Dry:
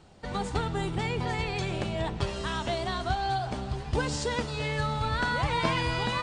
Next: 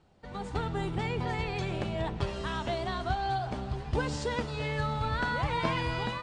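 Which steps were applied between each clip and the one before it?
treble shelf 4.7 kHz -8.5 dB; level rider gain up to 7.5 dB; trim -9 dB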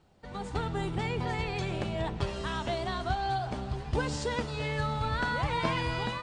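treble shelf 6.4 kHz +4.5 dB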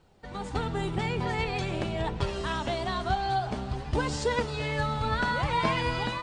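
flange 0.46 Hz, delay 1.9 ms, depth 3.7 ms, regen +67%; trim +7 dB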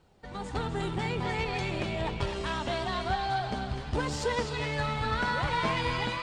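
valve stage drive 20 dB, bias 0.4; band-passed feedback delay 252 ms, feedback 48%, band-pass 2.7 kHz, level -3.5 dB

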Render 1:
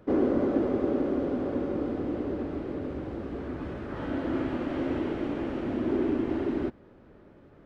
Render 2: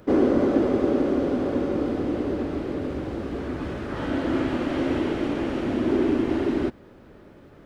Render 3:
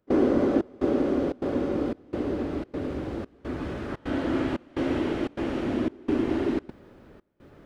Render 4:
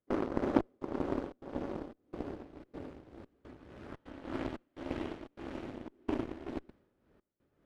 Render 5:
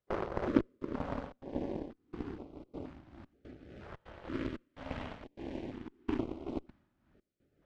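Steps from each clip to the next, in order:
treble shelf 3.6 kHz +10.5 dB; trim +5 dB
trance gate ".xxxxx..xxxxx" 148 bpm -24 dB; trim -2 dB
Chebyshev shaper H 3 -11 dB, 6 -29 dB, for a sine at -10 dBFS; tremolo 1.8 Hz, depth 69%; trim +1 dB
distance through air 65 m; step-sequenced notch 2.1 Hz 270–1700 Hz; trim +2 dB

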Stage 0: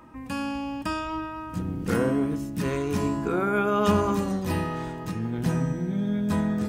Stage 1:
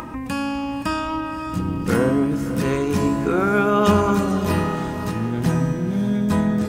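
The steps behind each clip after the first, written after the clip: upward compressor, threshold -29 dBFS; echo that smears into a reverb 556 ms, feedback 41%, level -11 dB; trim +5.5 dB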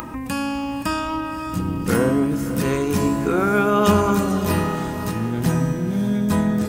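treble shelf 8.7 kHz +9.5 dB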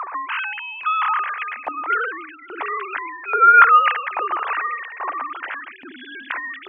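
formants replaced by sine waves; LFO high-pass saw up 1.2 Hz 830–2400 Hz; trim +1 dB

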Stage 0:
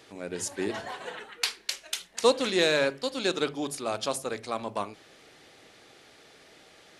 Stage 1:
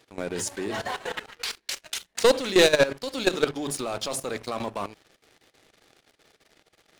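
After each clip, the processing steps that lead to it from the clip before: waveshaping leveller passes 3; bass shelf 69 Hz +6 dB; level held to a coarse grid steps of 15 dB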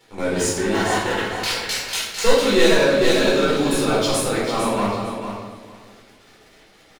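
feedback delay 450 ms, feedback 18%, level -8 dB; peak limiter -18 dBFS, peak gain reduction 10 dB; simulated room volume 390 m³, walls mixed, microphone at 4.3 m; trim -1 dB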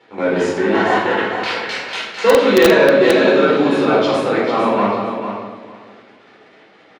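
band-pass 200–2500 Hz; in parallel at -3 dB: integer overflow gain 7.5 dB; on the sum: trim +1.5 dB

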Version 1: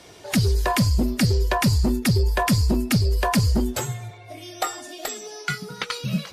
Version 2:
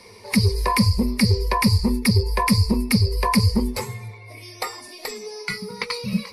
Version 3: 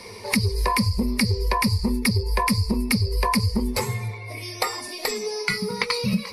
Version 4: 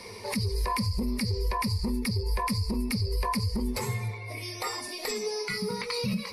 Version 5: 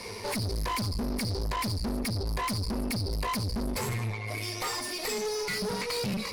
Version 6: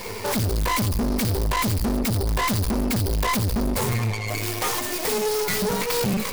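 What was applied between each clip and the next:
rippled EQ curve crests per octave 0.89, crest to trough 15 dB; trim -2 dB
compression, threshold -25 dBFS, peak gain reduction 12 dB; trim +6 dB
peak limiter -18 dBFS, peak gain reduction 11 dB; trim -3 dB
valve stage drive 36 dB, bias 0.75; trim +7.5 dB
tracing distortion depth 0.45 ms; trim +8 dB

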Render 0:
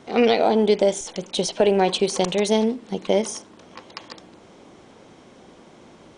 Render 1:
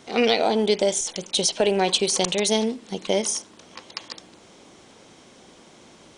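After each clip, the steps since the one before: treble shelf 2.6 kHz +11.5 dB; trim -3.5 dB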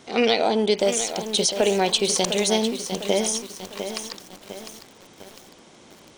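bit-crushed delay 703 ms, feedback 55%, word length 6-bit, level -9 dB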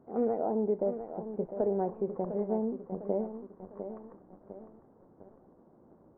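Gaussian low-pass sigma 9.1 samples; trim -7 dB

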